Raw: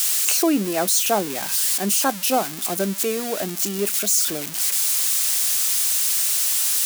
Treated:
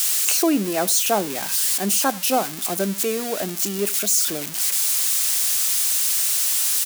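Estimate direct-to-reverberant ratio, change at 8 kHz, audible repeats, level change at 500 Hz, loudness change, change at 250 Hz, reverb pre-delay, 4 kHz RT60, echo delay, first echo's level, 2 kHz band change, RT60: no reverb audible, 0.0 dB, 1, 0.0 dB, 0.0 dB, 0.0 dB, no reverb audible, no reverb audible, 81 ms, −21.5 dB, 0.0 dB, no reverb audible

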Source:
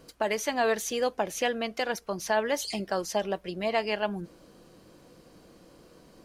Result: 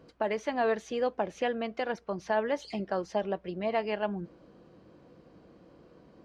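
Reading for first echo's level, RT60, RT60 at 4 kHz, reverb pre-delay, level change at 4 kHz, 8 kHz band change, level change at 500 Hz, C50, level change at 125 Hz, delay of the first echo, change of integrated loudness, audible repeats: no echo audible, no reverb audible, no reverb audible, no reverb audible, −9.0 dB, below −15 dB, −1.5 dB, no reverb audible, −0.5 dB, no echo audible, −2.5 dB, no echo audible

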